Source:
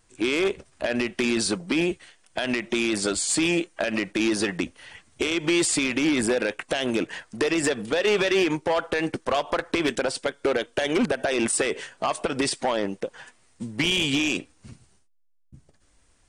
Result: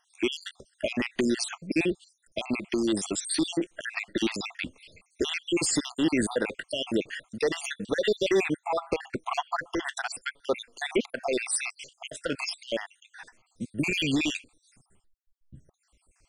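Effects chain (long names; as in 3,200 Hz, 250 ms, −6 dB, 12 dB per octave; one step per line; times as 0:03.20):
time-frequency cells dropped at random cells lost 66%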